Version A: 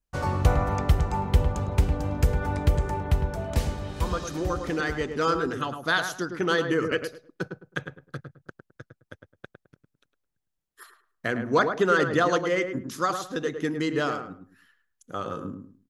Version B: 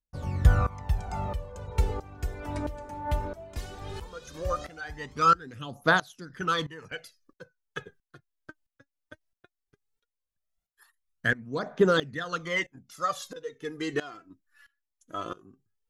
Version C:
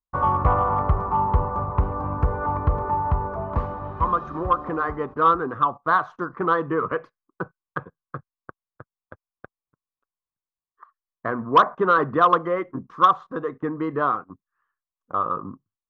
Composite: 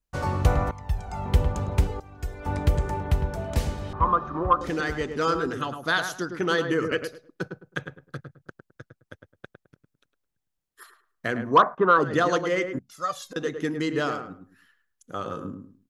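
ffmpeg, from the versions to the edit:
-filter_complex "[1:a]asplit=3[a][b][c];[2:a]asplit=2[d][e];[0:a]asplit=6[f][g][h][i][j][k];[f]atrim=end=0.712[l];[a]atrim=start=0.708:end=1.262[m];[g]atrim=start=1.258:end=1.872[n];[b]atrim=start=1.868:end=2.462[o];[h]atrim=start=2.458:end=3.932[p];[d]atrim=start=3.928:end=4.612[q];[i]atrim=start=4.608:end=11.64[r];[e]atrim=start=11.4:end=12.18[s];[j]atrim=start=11.94:end=12.792[t];[c]atrim=start=12.788:end=13.362[u];[k]atrim=start=13.358[v];[l][m]acrossfade=d=0.004:c1=hsin:c2=hsin[w];[w][n]acrossfade=d=0.004:c1=hsin:c2=hsin[x];[x][o]acrossfade=d=0.004:c1=hsin:c2=hsin[y];[y][p]acrossfade=d=0.004:c1=hsin:c2=hsin[z];[z][q]acrossfade=d=0.004:c1=hsin:c2=hsin[aa];[aa][r]acrossfade=d=0.004:c1=hsin:c2=hsin[ab];[ab][s]acrossfade=d=0.24:c1=tri:c2=tri[ac];[ac][t]acrossfade=d=0.24:c1=tri:c2=tri[ad];[ad][u]acrossfade=d=0.004:c1=hsin:c2=hsin[ae];[ae][v]acrossfade=d=0.004:c1=hsin:c2=hsin"

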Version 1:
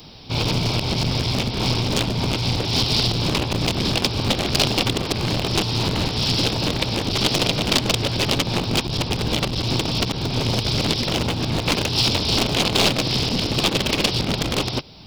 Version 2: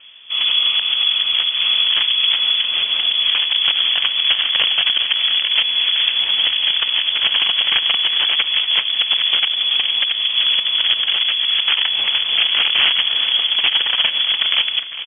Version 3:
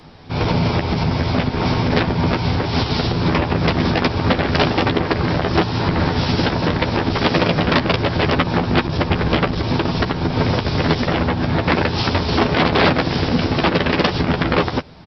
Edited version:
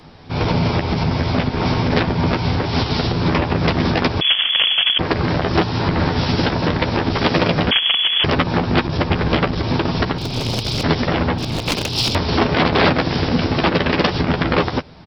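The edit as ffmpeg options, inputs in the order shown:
-filter_complex "[1:a]asplit=2[a][b];[0:a]asplit=2[c][d];[2:a]asplit=5[e][f][g][h][i];[e]atrim=end=4.212[j];[a]atrim=start=4.208:end=4.992[k];[f]atrim=start=4.988:end=7.712[l];[b]atrim=start=7.708:end=8.242[m];[g]atrim=start=8.238:end=10.182[n];[c]atrim=start=10.178:end=10.832[o];[h]atrim=start=10.828:end=11.382[p];[d]atrim=start=11.378:end=12.152[q];[i]atrim=start=12.148[r];[j][k]acrossfade=d=0.004:c1=hsin:c2=hsin[s];[s][l]acrossfade=d=0.004:c1=hsin:c2=hsin[t];[t][m]acrossfade=d=0.004:c1=hsin:c2=hsin[u];[u][n]acrossfade=d=0.004:c1=hsin:c2=hsin[v];[v][o]acrossfade=d=0.004:c1=hsin:c2=hsin[w];[w][p]acrossfade=d=0.004:c1=hsin:c2=hsin[x];[x][q]acrossfade=d=0.004:c1=hsin:c2=hsin[y];[y][r]acrossfade=d=0.004:c1=hsin:c2=hsin"

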